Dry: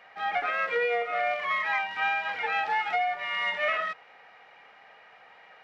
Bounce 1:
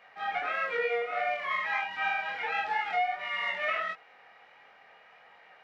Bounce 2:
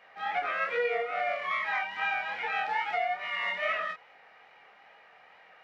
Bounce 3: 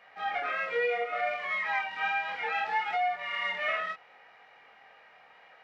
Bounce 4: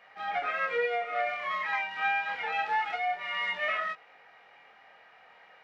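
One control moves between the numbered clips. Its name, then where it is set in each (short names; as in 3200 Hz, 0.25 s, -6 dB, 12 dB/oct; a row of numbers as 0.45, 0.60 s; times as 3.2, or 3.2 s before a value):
chorus, rate: 1.5, 2.4, 0.67, 0.25 Hz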